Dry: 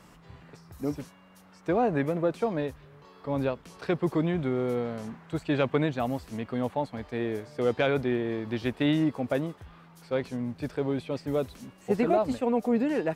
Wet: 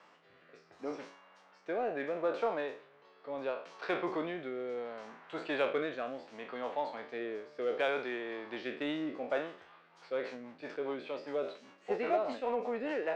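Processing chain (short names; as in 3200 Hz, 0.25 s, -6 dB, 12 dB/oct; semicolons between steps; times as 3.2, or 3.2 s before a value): spectral trails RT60 0.42 s; HPF 570 Hz 12 dB/oct; rotary speaker horn 0.7 Hz, later 5 Hz, at 9.45; Gaussian blur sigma 1.8 samples; in parallel at -9 dB: soft clip -34.5 dBFS, distortion -8 dB; on the sum: gain -2 dB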